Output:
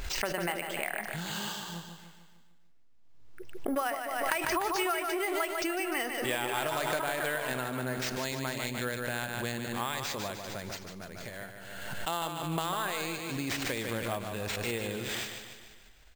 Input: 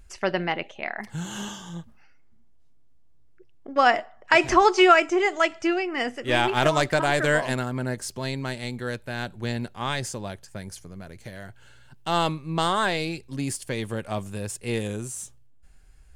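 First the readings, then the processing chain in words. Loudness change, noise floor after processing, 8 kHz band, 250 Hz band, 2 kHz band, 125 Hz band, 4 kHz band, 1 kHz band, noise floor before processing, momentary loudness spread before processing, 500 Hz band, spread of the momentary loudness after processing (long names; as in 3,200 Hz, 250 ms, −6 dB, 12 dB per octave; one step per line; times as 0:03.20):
−8.5 dB, −55 dBFS, −2.5 dB, −8.0 dB, −7.5 dB, −8.5 dB, −5.5 dB, −9.5 dB, −51 dBFS, 20 LU, −9.5 dB, 12 LU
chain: low-shelf EQ 330 Hz −10 dB
downward compressor 6 to 1, threshold −30 dBFS, peak gain reduction 17 dB
repeating echo 149 ms, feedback 53%, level −7 dB
bad sample-rate conversion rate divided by 4×, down none, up hold
background raised ahead of every attack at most 33 dB per second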